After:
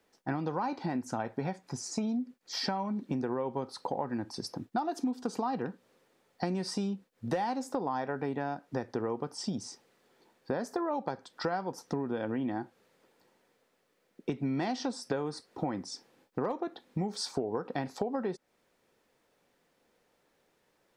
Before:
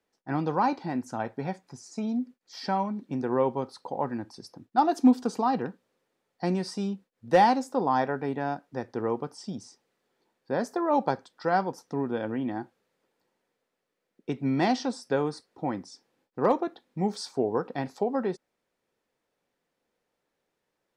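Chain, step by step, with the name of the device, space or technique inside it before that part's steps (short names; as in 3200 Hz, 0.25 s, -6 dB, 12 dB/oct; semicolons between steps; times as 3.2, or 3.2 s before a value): serial compression, leveller first (compressor 2.5:1, threshold -26 dBFS, peak gain reduction 8 dB; compressor 4:1, threshold -40 dBFS, peak gain reduction 15 dB); gain +8.5 dB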